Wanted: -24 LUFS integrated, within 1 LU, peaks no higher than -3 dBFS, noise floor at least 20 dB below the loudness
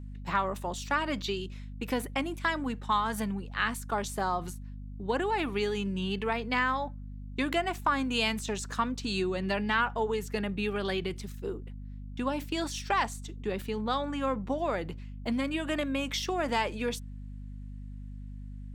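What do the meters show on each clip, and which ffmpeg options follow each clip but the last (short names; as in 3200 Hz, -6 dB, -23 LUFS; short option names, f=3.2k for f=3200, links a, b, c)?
hum 50 Hz; harmonics up to 250 Hz; hum level -39 dBFS; loudness -31.5 LUFS; peak -14.0 dBFS; loudness target -24.0 LUFS
-> -af "bandreject=f=50:t=h:w=4,bandreject=f=100:t=h:w=4,bandreject=f=150:t=h:w=4,bandreject=f=200:t=h:w=4,bandreject=f=250:t=h:w=4"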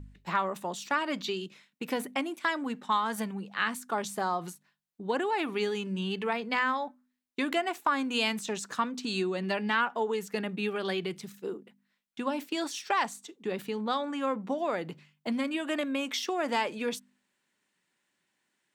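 hum none; loudness -31.5 LUFS; peak -14.5 dBFS; loudness target -24.0 LUFS
-> -af "volume=7.5dB"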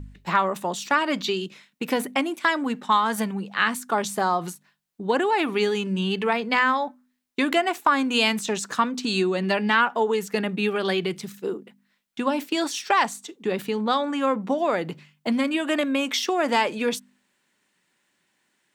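loudness -24.0 LUFS; peak -7.0 dBFS; noise floor -71 dBFS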